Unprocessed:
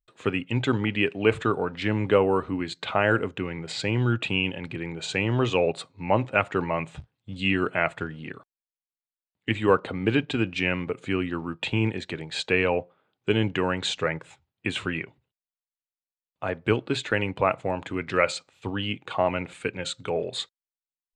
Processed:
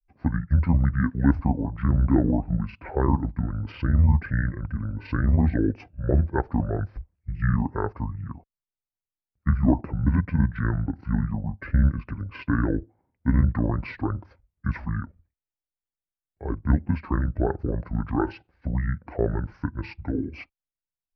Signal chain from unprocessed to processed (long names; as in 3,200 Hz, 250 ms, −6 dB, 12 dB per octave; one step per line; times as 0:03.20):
RIAA equalisation playback
granular cloud 100 ms, grains 20 per second, spray 14 ms, pitch spread up and down by 0 semitones
pitch shifter −8 semitones
level −2.5 dB